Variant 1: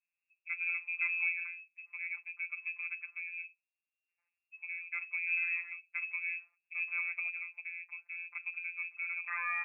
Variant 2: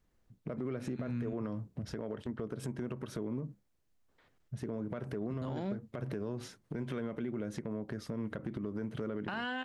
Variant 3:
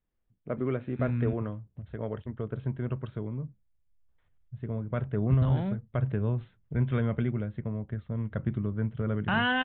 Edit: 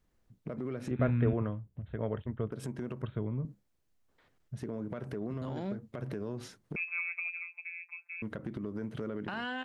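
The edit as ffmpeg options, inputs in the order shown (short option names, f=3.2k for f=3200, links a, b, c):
-filter_complex "[2:a]asplit=2[a][b];[1:a]asplit=4[c][d][e][f];[c]atrim=end=0.912[g];[a]atrim=start=0.908:end=2.522[h];[d]atrim=start=2.518:end=3.022[i];[b]atrim=start=3.018:end=3.452[j];[e]atrim=start=3.448:end=6.762[k];[0:a]atrim=start=6.758:end=8.222[l];[f]atrim=start=8.218[m];[g][h]acrossfade=d=0.004:c1=hsin:c2=hsin[n];[n][i]acrossfade=d=0.004:c1=hsin:c2=hsin[o];[o][j]acrossfade=d=0.004:c1=hsin:c2=hsin[p];[p][k]acrossfade=d=0.004:c1=hsin:c2=hsin[q];[q][l]acrossfade=d=0.004:c1=hsin:c2=hsin[r];[r][m]acrossfade=d=0.004:c1=hsin:c2=hsin"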